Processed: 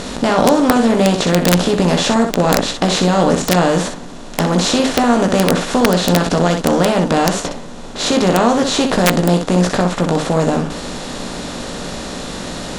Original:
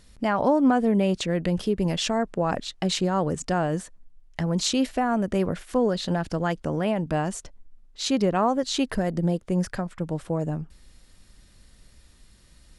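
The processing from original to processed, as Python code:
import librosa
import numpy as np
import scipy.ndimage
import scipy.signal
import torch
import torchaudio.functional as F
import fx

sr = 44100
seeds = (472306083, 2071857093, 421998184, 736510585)

y = fx.bin_compress(x, sr, power=0.4)
y = fx.room_early_taps(y, sr, ms=(17, 62), db=(-5.5, -6.0))
y = (np.mod(10.0 ** (4.0 / 20.0) * y + 1.0, 2.0) - 1.0) / 10.0 ** (4.0 / 20.0)
y = y * librosa.db_to_amplitude(3.0)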